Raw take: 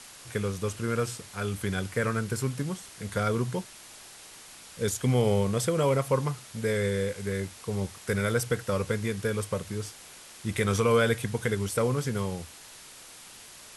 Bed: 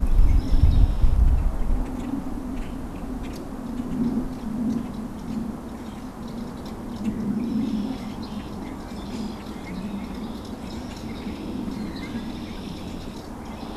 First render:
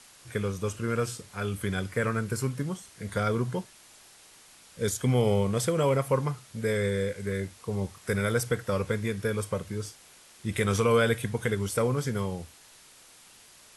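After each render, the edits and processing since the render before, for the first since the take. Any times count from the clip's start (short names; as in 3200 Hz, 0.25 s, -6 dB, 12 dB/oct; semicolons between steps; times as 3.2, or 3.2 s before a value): noise print and reduce 6 dB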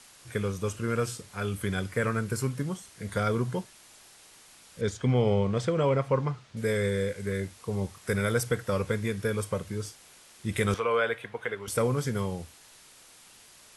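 4.81–6.57 air absorption 120 m; 10.74–11.68 three-band isolator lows -18 dB, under 420 Hz, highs -19 dB, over 3300 Hz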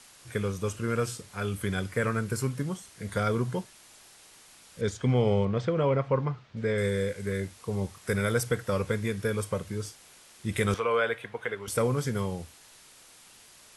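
5.45–6.78 air absorption 140 m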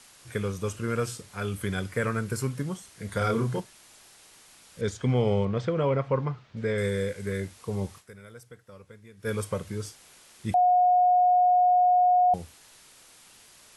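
3.18–3.6 doubler 31 ms -3 dB; 7.99–9.28 dip -20.5 dB, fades 0.34 s exponential; 10.54–12.34 bleep 723 Hz -17 dBFS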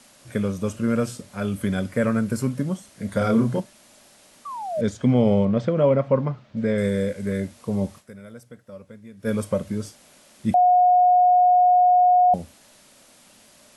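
4.45–4.81 painted sound fall 580–1200 Hz -34 dBFS; small resonant body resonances 230/580 Hz, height 12 dB, ringing for 30 ms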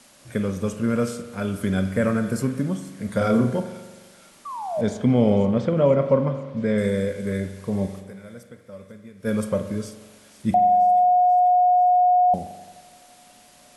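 thin delay 0.488 s, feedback 60%, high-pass 2300 Hz, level -15 dB; spring tank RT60 1.3 s, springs 42 ms, chirp 65 ms, DRR 8.5 dB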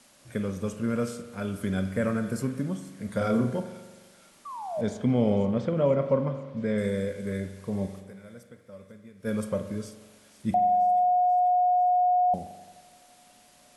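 gain -5.5 dB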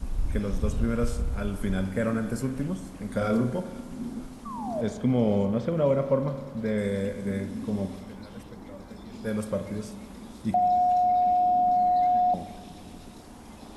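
add bed -11 dB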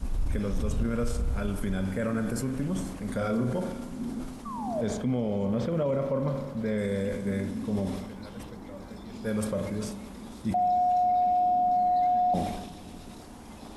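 limiter -20 dBFS, peak gain reduction 8 dB; sustainer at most 49 dB/s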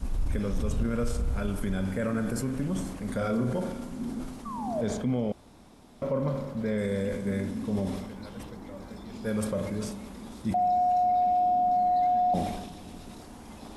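5.32–6.02 room tone; 10.57–11.12 notch 3400 Hz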